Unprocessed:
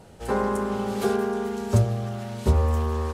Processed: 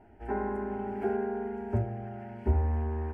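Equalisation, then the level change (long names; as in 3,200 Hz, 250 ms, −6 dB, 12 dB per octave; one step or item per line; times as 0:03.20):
high-frequency loss of the air 460 metres
phaser with its sweep stopped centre 770 Hz, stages 8
dynamic equaliser 3,800 Hz, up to −4 dB, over −55 dBFS, Q 1.1
−2.5 dB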